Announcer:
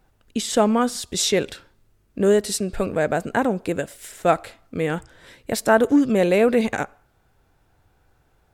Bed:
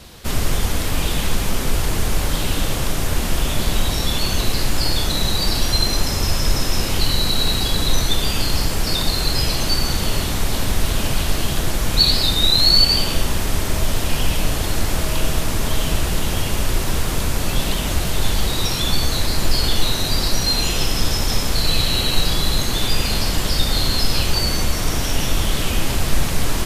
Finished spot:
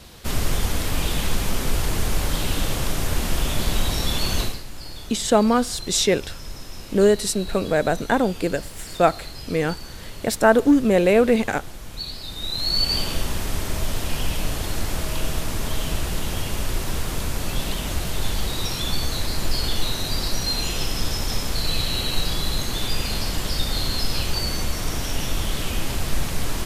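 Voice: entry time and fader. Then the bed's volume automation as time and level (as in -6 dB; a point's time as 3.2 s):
4.75 s, +1.0 dB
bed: 4.42 s -3 dB
4.63 s -17.5 dB
12.21 s -17.5 dB
12.96 s -5.5 dB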